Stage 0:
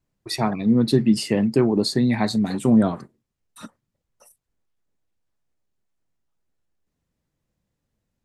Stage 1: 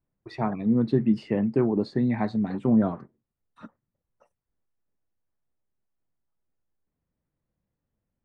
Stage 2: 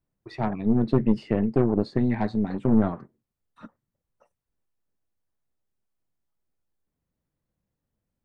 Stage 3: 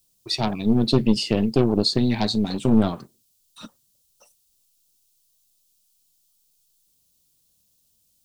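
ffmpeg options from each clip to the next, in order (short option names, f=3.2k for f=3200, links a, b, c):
-af "lowpass=1.8k,volume=-4.5dB"
-af "aeval=exprs='0.316*(cos(1*acos(clip(val(0)/0.316,-1,1)))-cos(1*PI/2))+0.0562*(cos(4*acos(clip(val(0)/0.316,-1,1)))-cos(4*PI/2))':c=same"
-af "aexciter=amount=10.9:drive=6.4:freq=2.9k,volume=2.5dB"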